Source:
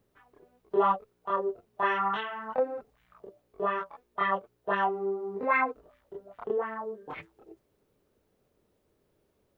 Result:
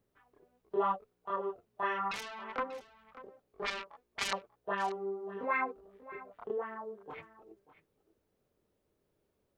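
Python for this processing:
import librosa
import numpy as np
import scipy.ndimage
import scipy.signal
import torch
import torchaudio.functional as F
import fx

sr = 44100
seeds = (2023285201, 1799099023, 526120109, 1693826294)

y = fx.self_delay(x, sr, depth_ms=0.67, at=(2.11, 4.33))
y = y + 10.0 ** (-16.5 / 20.0) * np.pad(y, (int(589 * sr / 1000.0), 0))[:len(y)]
y = F.gain(torch.from_numpy(y), -6.5).numpy()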